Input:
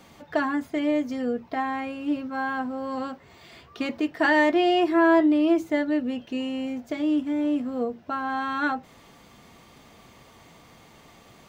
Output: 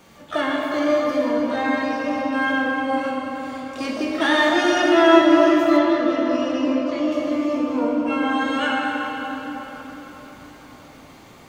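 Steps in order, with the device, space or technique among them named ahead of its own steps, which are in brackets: shimmer-style reverb (harmoniser +12 st -6 dB; reverb RT60 4.8 s, pre-delay 17 ms, DRR -3.5 dB); 5.77–7.12 LPF 5500 Hz 12 dB/oct; gain -1 dB

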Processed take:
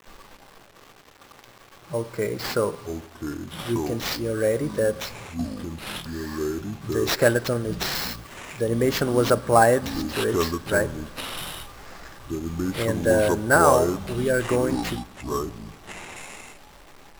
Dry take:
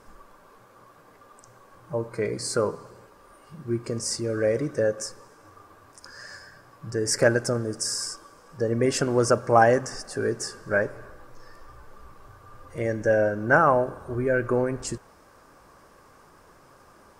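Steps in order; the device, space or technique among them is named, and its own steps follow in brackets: early 8-bit sampler (sample-rate reducer 9500 Hz, jitter 0%; bit-crush 8-bit); 7.95–8.6 high shelf 11000 Hz +7 dB; echoes that change speed 0.13 s, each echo -6 st, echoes 3, each echo -6 dB; gain +1 dB

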